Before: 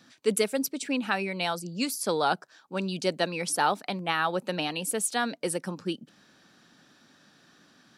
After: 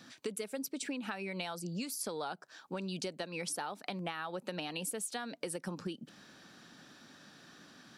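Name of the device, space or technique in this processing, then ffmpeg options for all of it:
serial compression, peaks first: -af "acompressor=threshold=-33dB:ratio=6,acompressor=threshold=-40dB:ratio=2.5,volume=2.5dB"

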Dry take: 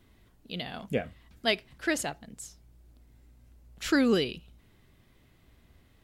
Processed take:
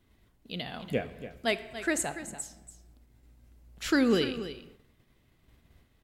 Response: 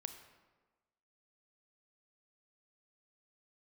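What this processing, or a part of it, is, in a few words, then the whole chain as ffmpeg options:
keyed gated reverb: -filter_complex "[0:a]asettb=1/sr,asplit=3[link_01][link_02][link_03];[link_01]atrim=end=1.474[link_04];[link_02]atrim=start=1.47:end=2.42,asetpts=PTS-STARTPTS,afade=type=in:duration=0.004:curve=qsin,afade=type=out:start_time=0.946:duration=0.004:curve=qsin,equalizer=frequency=3150:width_type=o:width=0.33:gain=-7,equalizer=frequency=5000:width_type=o:width=0.33:gain=-9,equalizer=frequency=8000:width_type=o:width=0.33:gain=9[link_05];[link_03]atrim=start=2.416[link_06];[link_04][link_05]acrossfade=duration=0.004:curve1=hsin:curve2=qsin[link_07];[link_07][link_06]acrossfade=duration=0.004:curve1=qsin:curve2=hsin,aecho=1:1:286:0.237,asplit=3[link_08][link_09][link_10];[1:a]atrim=start_sample=2205[link_11];[link_09][link_11]afir=irnorm=-1:irlink=0[link_12];[link_10]apad=whole_len=278846[link_13];[link_12][link_13]sidechaingate=range=-33dB:threshold=-58dB:ratio=16:detection=peak,volume=3.5dB[link_14];[link_08][link_14]amix=inputs=2:normalize=0,volume=-6.5dB"

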